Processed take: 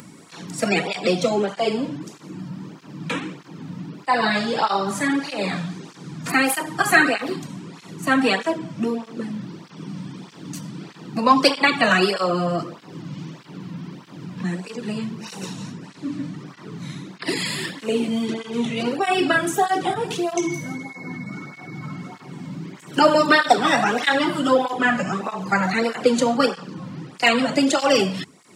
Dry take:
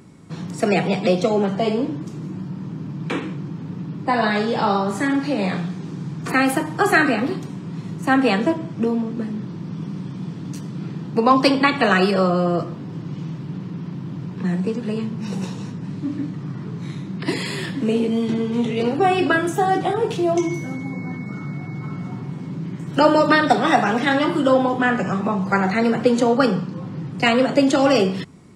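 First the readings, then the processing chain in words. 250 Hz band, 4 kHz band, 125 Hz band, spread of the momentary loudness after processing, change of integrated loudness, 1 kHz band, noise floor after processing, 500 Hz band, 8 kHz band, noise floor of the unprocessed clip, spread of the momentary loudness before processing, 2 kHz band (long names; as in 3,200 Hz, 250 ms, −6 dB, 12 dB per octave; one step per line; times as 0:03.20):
−4.0 dB, +3.0 dB, −6.0 dB, 19 LU, 0.0 dB, −1.0 dB, −45 dBFS, −2.5 dB, +5.5 dB, −33 dBFS, 14 LU, +1.5 dB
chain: spectral tilt +2 dB per octave
upward compression, threshold −37 dBFS
through-zero flanger with one copy inverted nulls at 1.6 Hz, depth 2.8 ms
level +2.5 dB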